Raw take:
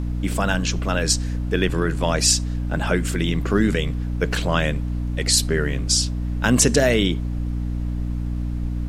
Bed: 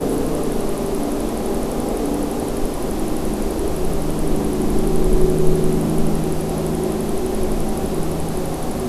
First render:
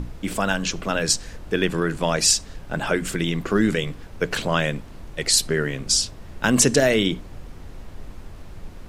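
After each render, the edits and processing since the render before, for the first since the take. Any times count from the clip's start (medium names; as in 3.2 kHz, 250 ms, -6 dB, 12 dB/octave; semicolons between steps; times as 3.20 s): hum notches 60/120/180/240/300 Hz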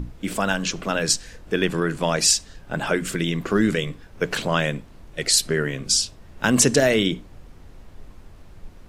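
noise print and reduce 6 dB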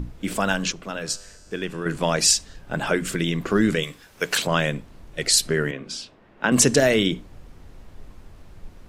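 0.72–1.86 s: feedback comb 100 Hz, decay 1.7 s; 3.83–4.47 s: tilt EQ +3 dB/octave; 5.71–6.52 s: three-band isolator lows -18 dB, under 180 Hz, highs -20 dB, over 3.3 kHz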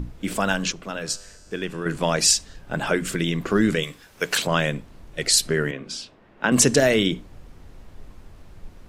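no audible change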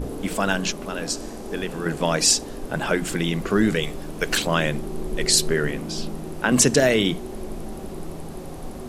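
add bed -13 dB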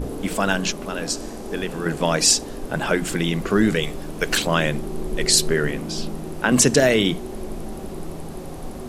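trim +1.5 dB; peak limiter -3 dBFS, peak gain reduction 1.5 dB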